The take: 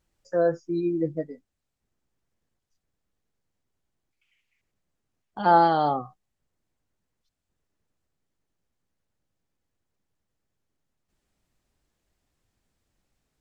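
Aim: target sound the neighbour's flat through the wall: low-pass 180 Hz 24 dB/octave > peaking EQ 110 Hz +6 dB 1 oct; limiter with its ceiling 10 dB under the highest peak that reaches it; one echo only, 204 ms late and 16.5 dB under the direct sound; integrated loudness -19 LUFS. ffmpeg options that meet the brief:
-af "alimiter=limit=0.133:level=0:latency=1,lowpass=f=180:w=0.5412,lowpass=f=180:w=1.3066,equalizer=f=110:t=o:w=1:g=6,aecho=1:1:204:0.15,volume=13.3"

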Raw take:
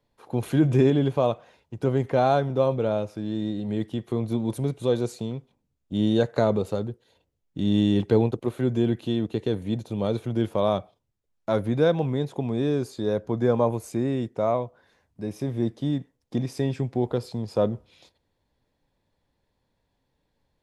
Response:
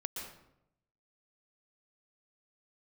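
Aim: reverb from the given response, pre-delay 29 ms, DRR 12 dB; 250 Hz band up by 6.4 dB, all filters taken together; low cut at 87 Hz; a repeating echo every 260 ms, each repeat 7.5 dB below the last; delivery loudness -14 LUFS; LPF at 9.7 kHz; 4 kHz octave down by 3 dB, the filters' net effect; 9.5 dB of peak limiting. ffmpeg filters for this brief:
-filter_complex "[0:a]highpass=87,lowpass=9700,equalizer=f=250:t=o:g=8,equalizer=f=4000:t=o:g=-3.5,alimiter=limit=0.211:level=0:latency=1,aecho=1:1:260|520|780|1040|1300:0.422|0.177|0.0744|0.0312|0.0131,asplit=2[s0][s1];[1:a]atrim=start_sample=2205,adelay=29[s2];[s1][s2]afir=irnorm=-1:irlink=0,volume=0.237[s3];[s0][s3]amix=inputs=2:normalize=0,volume=2.99"

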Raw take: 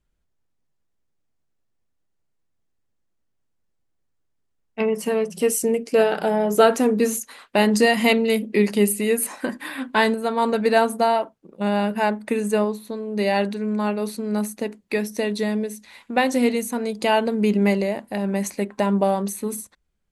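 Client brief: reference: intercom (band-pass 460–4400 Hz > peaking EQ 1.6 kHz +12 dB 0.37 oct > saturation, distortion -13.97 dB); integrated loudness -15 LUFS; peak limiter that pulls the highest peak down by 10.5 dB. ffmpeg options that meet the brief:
-af "alimiter=limit=0.188:level=0:latency=1,highpass=460,lowpass=4400,equalizer=f=1600:t=o:w=0.37:g=12,asoftclip=threshold=0.106,volume=5.31"

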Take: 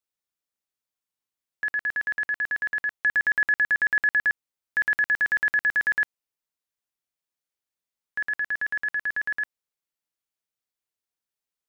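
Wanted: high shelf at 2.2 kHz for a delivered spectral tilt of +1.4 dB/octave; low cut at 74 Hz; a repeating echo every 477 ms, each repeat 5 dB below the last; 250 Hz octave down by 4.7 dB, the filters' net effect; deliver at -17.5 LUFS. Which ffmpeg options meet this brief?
-af "highpass=74,equalizer=f=250:t=o:g=-6.5,highshelf=f=2200:g=-4,aecho=1:1:477|954|1431|1908|2385|2862|3339:0.562|0.315|0.176|0.0988|0.0553|0.031|0.0173,volume=2"

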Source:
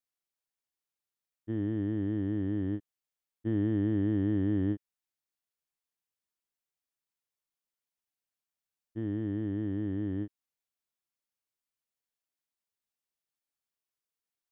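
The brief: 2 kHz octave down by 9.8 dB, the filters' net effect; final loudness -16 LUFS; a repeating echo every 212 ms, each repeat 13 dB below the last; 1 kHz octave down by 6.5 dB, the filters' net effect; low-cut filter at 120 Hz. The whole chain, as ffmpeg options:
-af "highpass=120,equalizer=f=1000:t=o:g=-7.5,equalizer=f=2000:t=o:g=-9,aecho=1:1:212|424|636:0.224|0.0493|0.0108,volume=7.08"

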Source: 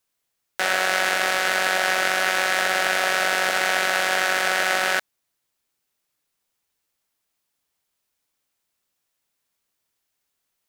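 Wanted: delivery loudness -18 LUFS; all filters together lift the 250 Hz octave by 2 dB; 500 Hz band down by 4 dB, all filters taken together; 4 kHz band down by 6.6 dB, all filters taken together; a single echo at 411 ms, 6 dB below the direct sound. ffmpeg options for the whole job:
-af "equalizer=f=250:t=o:g=7,equalizer=f=500:t=o:g=-6.5,equalizer=f=4000:t=o:g=-9,aecho=1:1:411:0.501,volume=1.58"

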